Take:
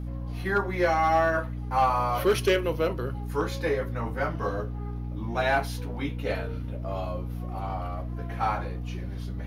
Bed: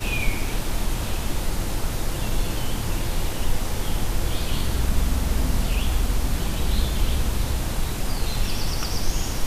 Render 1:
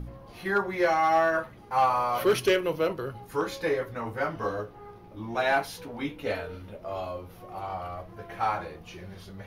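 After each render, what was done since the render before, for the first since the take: de-hum 60 Hz, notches 5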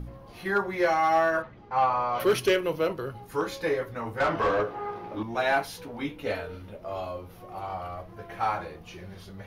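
1.42–2.2 air absorption 150 m; 4.2–5.23 overdrive pedal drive 23 dB, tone 1500 Hz, clips at -15.5 dBFS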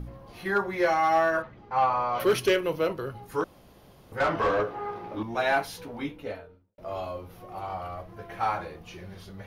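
3.44–4.12 room tone; 5.89–6.78 studio fade out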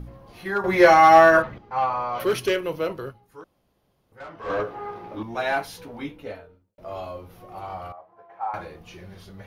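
0.64–1.58 gain +10.5 dB; 3.09–4.51 dip -15 dB, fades 0.35 s exponential; 7.92–8.54 band-pass 840 Hz, Q 2.8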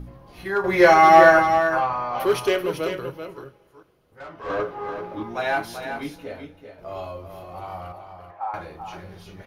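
echo 0.386 s -8 dB; two-slope reverb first 0.24 s, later 2.7 s, from -21 dB, DRR 10.5 dB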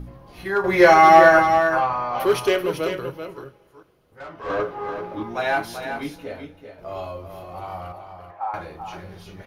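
gain +1.5 dB; limiter -3 dBFS, peak gain reduction 2.5 dB

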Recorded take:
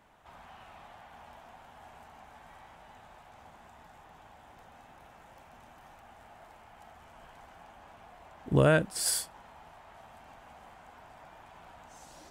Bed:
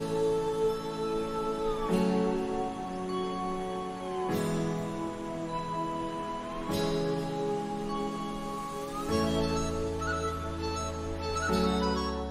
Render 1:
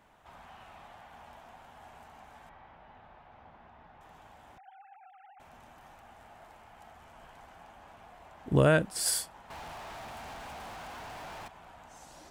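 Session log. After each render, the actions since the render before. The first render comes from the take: 2.49–4.01 air absorption 280 m; 4.58–5.4 sine-wave speech; 9.5–11.48 sample leveller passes 5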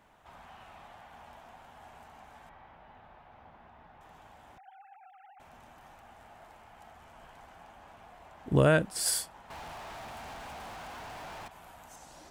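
11.51–11.96 bell 13000 Hz +14 dB 1.2 oct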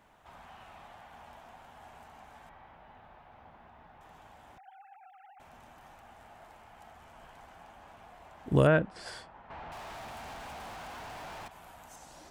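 8.67–9.72 LPF 2300 Hz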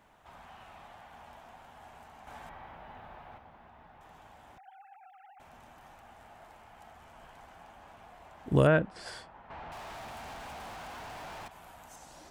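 2.27–3.38 gain +6 dB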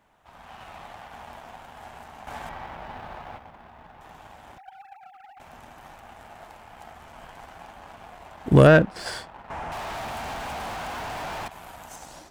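sample leveller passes 1; AGC gain up to 8 dB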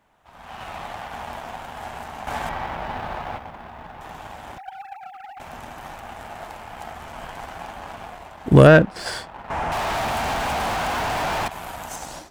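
AGC gain up to 9 dB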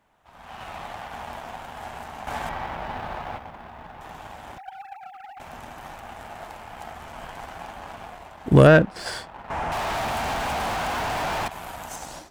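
gain -2.5 dB

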